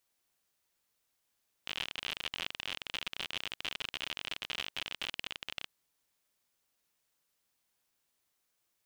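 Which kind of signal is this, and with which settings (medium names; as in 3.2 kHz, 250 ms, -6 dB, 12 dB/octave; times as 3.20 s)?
random clicks 54 per s -20.5 dBFS 4.00 s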